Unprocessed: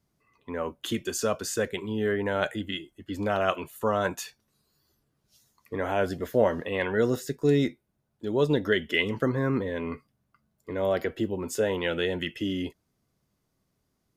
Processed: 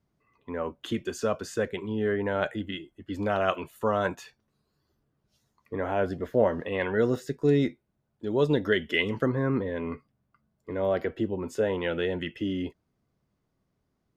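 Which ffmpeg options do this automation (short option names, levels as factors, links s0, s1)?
-af "asetnsamples=n=441:p=0,asendcmd='3.1 lowpass f 4200;4.15 lowpass f 1700;6.6 lowpass f 3100;8.31 lowpass f 5500;9.26 lowpass f 2100',lowpass=f=2300:p=1"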